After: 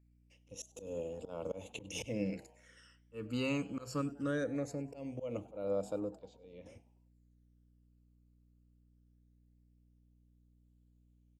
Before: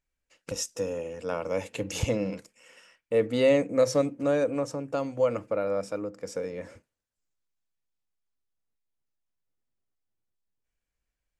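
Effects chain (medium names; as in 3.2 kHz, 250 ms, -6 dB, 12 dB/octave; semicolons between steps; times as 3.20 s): 6.16–6.66 s: four-pole ladder low-pass 4.5 kHz, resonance 55%; slow attack 194 ms; phase shifter stages 12, 0.21 Hz, lowest notch 600–1900 Hz; hum 60 Hz, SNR 25 dB; on a send: frequency-shifting echo 99 ms, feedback 47%, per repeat +140 Hz, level -23 dB; on the sum: trim -4.5 dB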